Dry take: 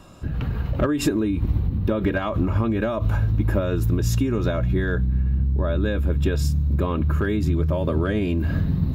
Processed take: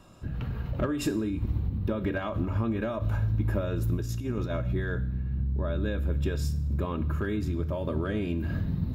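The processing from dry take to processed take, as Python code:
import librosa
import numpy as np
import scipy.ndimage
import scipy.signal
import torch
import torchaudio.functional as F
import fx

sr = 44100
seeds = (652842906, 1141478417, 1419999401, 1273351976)

y = fx.over_compress(x, sr, threshold_db=-23.0, ratio=-0.5, at=(3.97, 4.66))
y = fx.rev_double_slope(y, sr, seeds[0], early_s=0.62, late_s=1.8, knee_db=-23, drr_db=11.0)
y = y * librosa.db_to_amplitude(-7.5)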